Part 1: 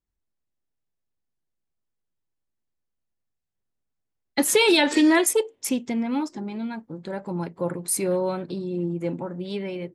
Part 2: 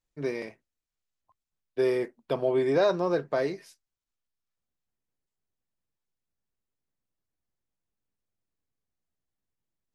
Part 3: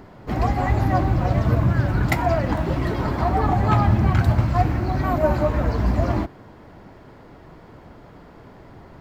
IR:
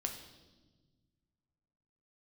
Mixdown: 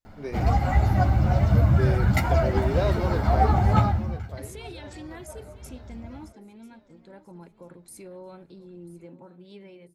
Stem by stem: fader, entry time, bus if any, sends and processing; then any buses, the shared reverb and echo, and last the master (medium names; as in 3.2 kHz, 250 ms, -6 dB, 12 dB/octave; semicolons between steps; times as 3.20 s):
-16.0 dB, 0.00 s, no send, echo send -17 dB, peak limiter -19.5 dBFS, peak gain reduction 11 dB
-4.5 dB, 0.00 s, no send, echo send -11 dB, none
-1.0 dB, 0.05 s, no send, no echo send, tone controls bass +3 dB, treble +3 dB; comb 1.4 ms, depth 40%; three-phase chorus; auto duck -23 dB, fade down 0.60 s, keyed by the first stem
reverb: none
echo: feedback delay 992 ms, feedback 34%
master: none